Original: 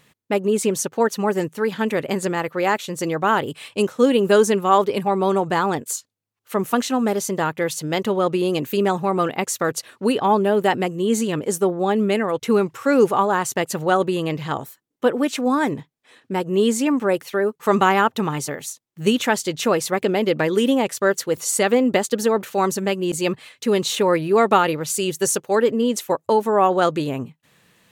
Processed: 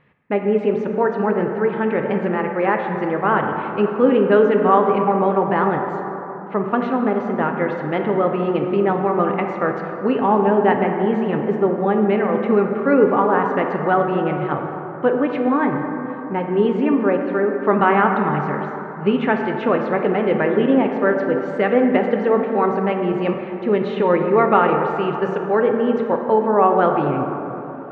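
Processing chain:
low-pass filter 2,300 Hz 24 dB per octave
dense smooth reverb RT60 3.7 s, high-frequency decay 0.35×, DRR 3 dB

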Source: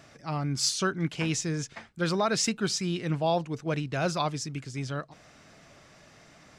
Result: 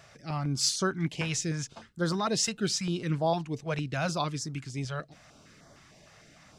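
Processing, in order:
0:01.73–0:02.65: notch filter 2,300 Hz, Q 6.8
notch on a step sequencer 6.6 Hz 280–2,600 Hz

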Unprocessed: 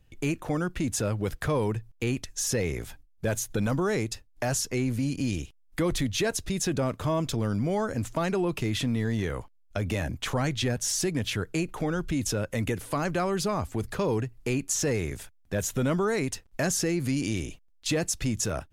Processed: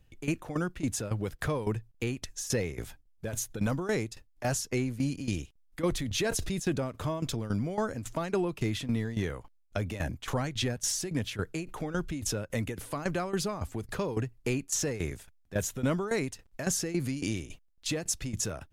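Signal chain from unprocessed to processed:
shaped tremolo saw down 3.6 Hz, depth 80%
0:05.99–0:06.60: level that may fall only so fast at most 26 dB per second

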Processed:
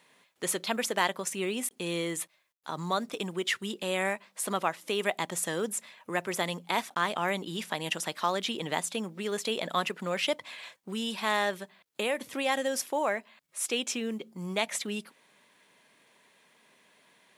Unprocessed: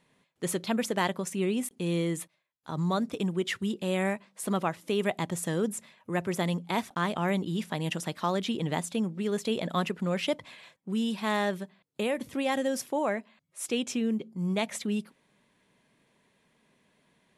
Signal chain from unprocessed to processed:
high-pass filter 300 Hz 6 dB per octave
low-shelf EQ 430 Hz −8.5 dB
in parallel at −0.5 dB: downward compressor, threshold −47 dBFS, peak gain reduction 21 dB
on the sum: log-companded quantiser 8 bits
level +2.5 dB

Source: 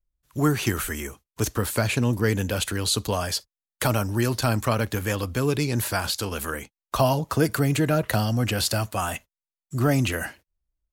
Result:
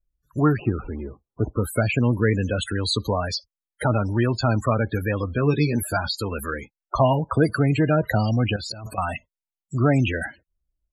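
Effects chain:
0:00.57–0:01.64: running median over 25 samples
spectral peaks only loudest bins 32
0:05.37–0:05.97: double-tracking delay 13 ms −6 dB
0:08.56–0:08.98: compressor whose output falls as the input rises −37 dBFS, ratio −1
level +2.5 dB

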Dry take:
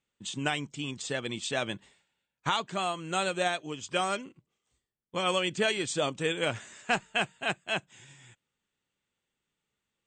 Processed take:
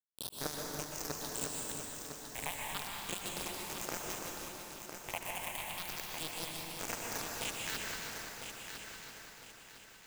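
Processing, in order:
peak hold with a rise ahead of every peak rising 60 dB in 0.55 s
0:01.26–0:01.71: drawn EQ curve 770 Hz 0 dB, 4,800 Hz −30 dB, 8,000 Hz +14 dB
harmonic and percussive parts rebalanced harmonic −12 dB
0:05.71–0:06.93: flat-topped bell 1,100 Hz −11.5 dB
downward compressor 12 to 1, threshold −42 dBFS, peak gain reduction 19 dB
bit-depth reduction 6 bits, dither none
all-pass phaser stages 6, 0.33 Hz, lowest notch 330–3,700 Hz
echo machine with several playback heads 335 ms, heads first and third, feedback 54%, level −8.5 dB
dense smooth reverb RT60 2.7 s, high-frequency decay 0.75×, pre-delay 110 ms, DRR −1.5 dB
level +9 dB

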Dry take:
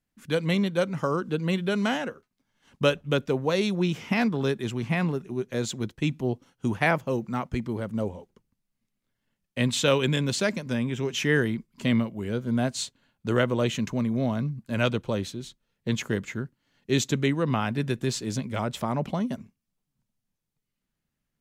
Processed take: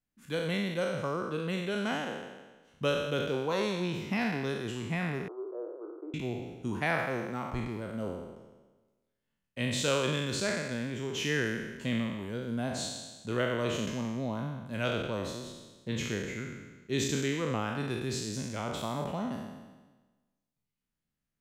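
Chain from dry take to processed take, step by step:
peak hold with a decay on every bin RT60 1.25 s
0:05.28–0:06.14: Chebyshev band-pass filter 320–1,300 Hz, order 5
level −9 dB

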